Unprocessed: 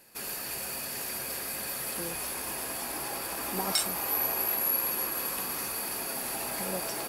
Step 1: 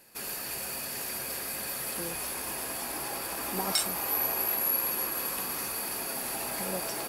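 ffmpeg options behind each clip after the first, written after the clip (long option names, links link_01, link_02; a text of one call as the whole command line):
ffmpeg -i in.wav -af anull out.wav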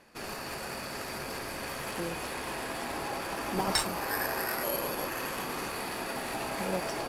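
ffmpeg -i in.wav -filter_complex "[0:a]asplit=2[link_01][link_02];[link_02]acrusher=samples=10:mix=1:aa=0.000001:lfo=1:lforange=6:lforate=0.29,volume=-7dB[link_03];[link_01][link_03]amix=inputs=2:normalize=0,adynamicsmooth=sensitivity=4:basefreq=5800" out.wav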